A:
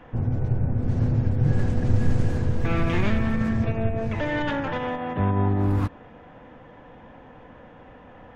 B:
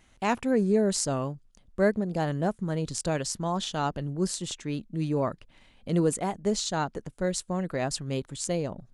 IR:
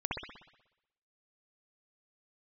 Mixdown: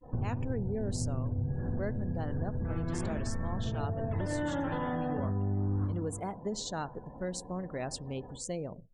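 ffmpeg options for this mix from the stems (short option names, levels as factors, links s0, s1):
-filter_complex "[0:a]agate=range=0.0224:threshold=0.00708:ratio=3:detection=peak,equalizer=f=2400:w=3.1:g=-12,acompressor=threshold=0.0631:ratio=6,volume=0.891,asplit=3[s0][s1][s2];[s1]volume=0.355[s3];[s2]volume=0.168[s4];[1:a]volume=0.422,asplit=3[s5][s6][s7];[s6]volume=0.075[s8];[s7]apad=whole_len=368579[s9];[s0][s9]sidechaincompress=threshold=0.0126:ratio=8:attack=35:release=984[s10];[2:a]atrim=start_sample=2205[s11];[s3][s8]amix=inputs=2:normalize=0[s12];[s12][s11]afir=irnorm=-1:irlink=0[s13];[s4]aecho=0:1:324:1[s14];[s10][s5][s13][s14]amix=inputs=4:normalize=0,afftdn=nr=28:nf=-48,acompressor=threshold=0.0316:ratio=4"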